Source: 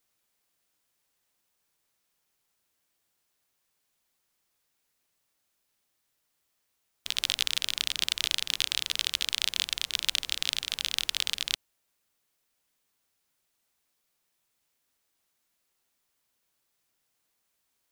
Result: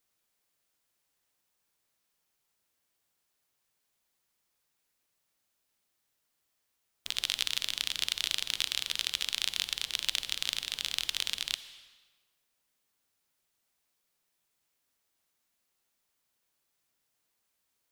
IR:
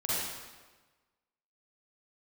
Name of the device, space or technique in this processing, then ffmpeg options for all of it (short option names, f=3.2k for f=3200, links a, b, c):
saturated reverb return: -filter_complex "[0:a]asplit=2[a][b];[1:a]atrim=start_sample=2205[c];[b][c]afir=irnorm=-1:irlink=0,asoftclip=type=tanh:threshold=-24dB,volume=-16.5dB[d];[a][d]amix=inputs=2:normalize=0,volume=-3.5dB"